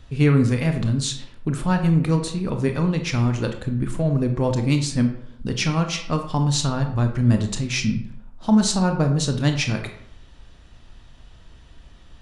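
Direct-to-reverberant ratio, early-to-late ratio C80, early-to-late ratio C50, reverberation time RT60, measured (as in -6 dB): 5.0 dB, 11.5 dB, 8.5 dB, 0.70 s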